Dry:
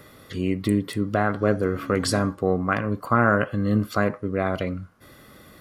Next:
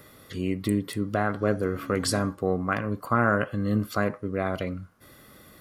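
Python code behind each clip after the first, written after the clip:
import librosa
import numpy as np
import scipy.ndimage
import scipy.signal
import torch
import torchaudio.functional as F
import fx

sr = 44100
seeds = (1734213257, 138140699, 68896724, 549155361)

y = fx.high_shelf(x, sr, hz=8000.0, db=6.5)
y = y * librosa.db_to_amplitude(-3.5)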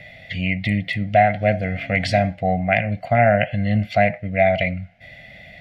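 y = fx.curve_eq(x, sr, hz=(180.0, 390.0, 700.0, 1100.0, 2100.0, 11000.0), db=(0, -23, 11, -30, 13, -28))
y = y * librosa.db_to_amplitude(8.5)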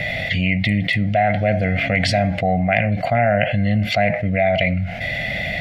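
y = fx.env_flatten(x, sr, amount_pct=70)
y = y * librosa.db_to_amplitude(-4.0)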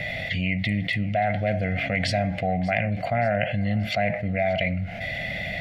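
y = fx.echo_feedback(x, sr, ms=583, feedback_pct=47, wet_db=-20.0)
y = y * librosa.db_to_amplitude(-6.5)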